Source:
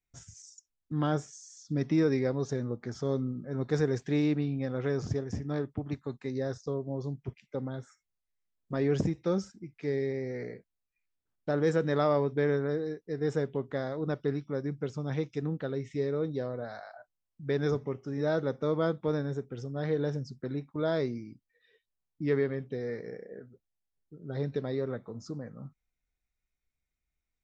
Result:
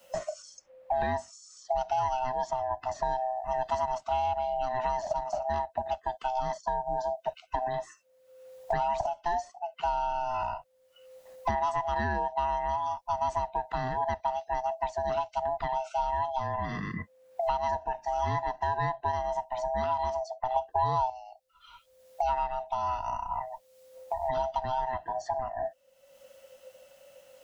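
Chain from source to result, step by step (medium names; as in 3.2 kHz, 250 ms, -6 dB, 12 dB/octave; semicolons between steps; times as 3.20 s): split-band scrambler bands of 500 Hz; 20.56–21.10 s: graphic EQ 500/1000/2000/4000 Hz +10/+12/-8/+3 dB; three bands compressed up and down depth 100%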